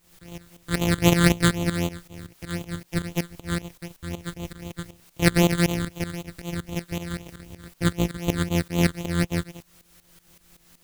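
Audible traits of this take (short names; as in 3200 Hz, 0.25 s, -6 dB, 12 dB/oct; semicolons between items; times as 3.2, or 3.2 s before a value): a buzz of ramps at a fixed pitch in blocks of 256 samples; phasing stages 8, 3.9 Hz, lowest notch 740–1600 Hz; a quantiser's noise floor 10-bit, dither triangular; tremolo saw up 5.3 Hz, depth 85%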